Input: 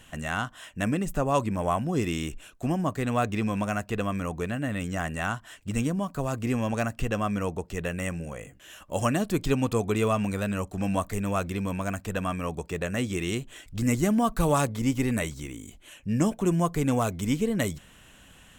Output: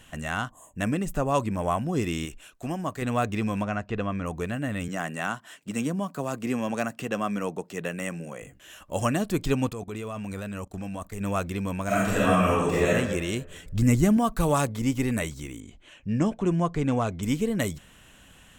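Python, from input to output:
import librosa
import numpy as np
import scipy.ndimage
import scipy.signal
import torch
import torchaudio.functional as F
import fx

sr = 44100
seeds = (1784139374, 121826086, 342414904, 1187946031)

y = fx.spec_box(x, sr, start_s=0.5, length_s=0.26, low_hz=1200.0, high_hz=6300.0, gain_db=-26)
y = fx.low_shelf(y, sr, hz=470.0, db=-6.0, at=(2.25, 3.02))
y = fx.air_absorb(y, sr, metres=140.0, at=(3.62, 4.25), fade=0.02)
y = fx.highpass(y, sr, hz=150.0, slope=24, at=(4.88, 8.42))
y = fx.level_steps(y, sr, step_db=17, at=(9.69, 11.21))
y = fx.reverb_throw(y, sr, start_s=11.86, length_s=1.02, rt60_s=1.2, drr_db=-9.0)
y = fx.low_shelf(y, sr, hz=180.0, db=9.5, at=(13.5, 14.17))
y = fx.air_absorb(y, sr, metres=97.0, at=(15.6, 17.23))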